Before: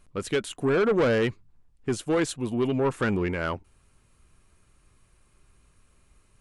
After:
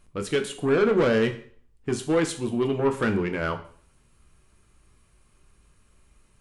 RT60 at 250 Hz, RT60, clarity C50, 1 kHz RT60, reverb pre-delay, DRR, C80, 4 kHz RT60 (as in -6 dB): 0.55 s, 0.50 s, 12.5 dB, 0.50 s, 6 ms, 6.0 dB, 16.0 dB, 0.45 s